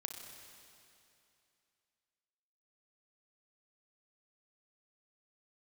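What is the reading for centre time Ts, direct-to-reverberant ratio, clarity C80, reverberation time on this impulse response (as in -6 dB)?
73 ms, 3.0 dB, 5.0 dB, 2.7 s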